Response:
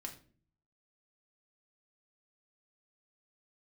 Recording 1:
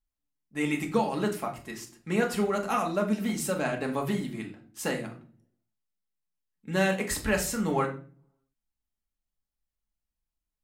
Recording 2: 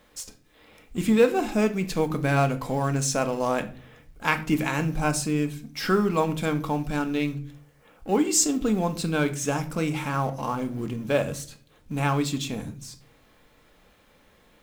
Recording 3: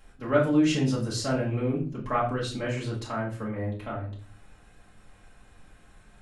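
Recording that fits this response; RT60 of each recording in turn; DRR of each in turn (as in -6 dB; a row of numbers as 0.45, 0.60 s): 1; 0.45, 0.45, 0.45 s; 1.5, 7.5, -6.0 dB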